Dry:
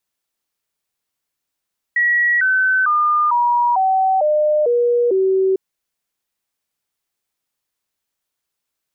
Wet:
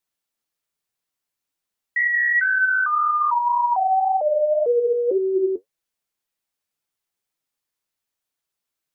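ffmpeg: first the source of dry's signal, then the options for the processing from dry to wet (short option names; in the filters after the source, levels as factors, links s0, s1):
-f lavfi -i "aevalsrc='0.237*clip(min(mod(t,0.45),0.45-mod(t,0.45))/0.005,0,1)*sin(2*PI*1920*pow(2,-floor(t/0.45)/3)*mod(t,0.45))':d=3.6:s=44100"
-af "flanger=delay=5.9:depth=6.1:regen=53:speed=1.9:shape=sinusoidal"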